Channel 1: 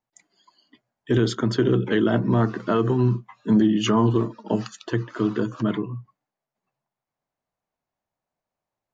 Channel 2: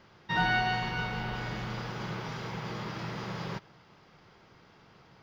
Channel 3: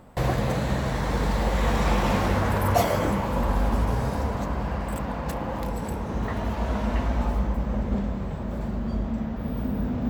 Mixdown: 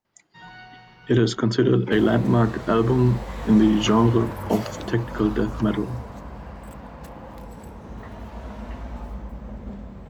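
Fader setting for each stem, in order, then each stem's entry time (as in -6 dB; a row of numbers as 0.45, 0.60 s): +1.5, -16.5, -9.5 dB; 0.00, 0.05, 1.75 s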